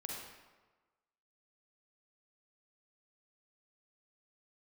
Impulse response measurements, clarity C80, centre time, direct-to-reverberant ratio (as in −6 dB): 2.0 dB, 77 ms, −2.0 dB